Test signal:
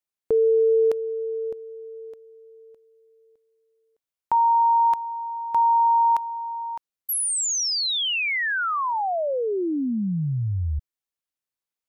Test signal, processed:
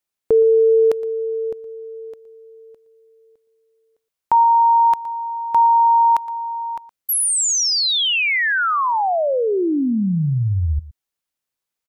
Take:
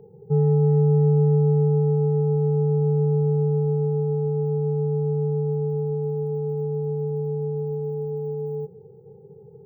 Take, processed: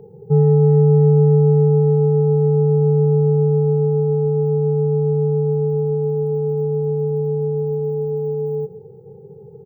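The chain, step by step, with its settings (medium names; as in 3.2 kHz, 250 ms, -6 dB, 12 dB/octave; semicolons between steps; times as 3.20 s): delay 117 ms -17.5 dB; trim +6 dB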